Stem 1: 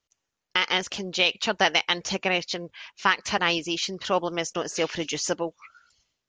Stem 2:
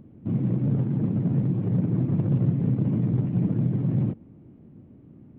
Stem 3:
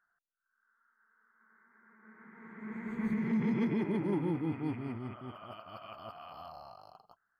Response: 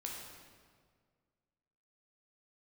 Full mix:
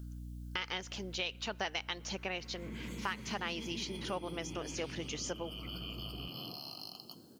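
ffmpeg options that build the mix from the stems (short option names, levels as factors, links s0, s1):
-filter_complex "[0:a]aeval=exprs='val(0)+0.0126*(sin(2*PI*60*n/s)+sin(2*PI*2*60*n/s)/2+sin(2*PI*3*60*n/s)/3+sin(2*PI*4*60*n/s)/4+sin(2*PI*5*60*n/s)/5)':c=same,volume=0.562,asplit=2[s0][s1];[s1]volume=0.0668[s2];[1:a]acompressor=threshold=0.0562:ratio=6,bandpass=f=460:t=q:w=1.6:csg=0,adelay=2400,volume=0.708,asplit=2[s3][s4];[s4]volume=0.376[s5];[2:a]aexciter=amount=14.8:drive=6.8:freq=2800,volume=0.668,asplit=2[s6][s7];[s7]volume=0.447[s8];[s3][s6]amix=inputs=2:normalize=0,equalizer=f=3000:w=4:g=7.5,acompressor=threshold=0.00794:ratio=6,volume=1[s9];[3:a]atrim=start_sample=2205[s10];[s2][s5][s8]amix=inputs=3:normalize=0[s11];[s11][s10]afir=irnorm=-1:irlink=0[s12];[s0][s9][s12]amix=inputs=3:normalize=0,acompressor=threshold=0.00794:ratio=2"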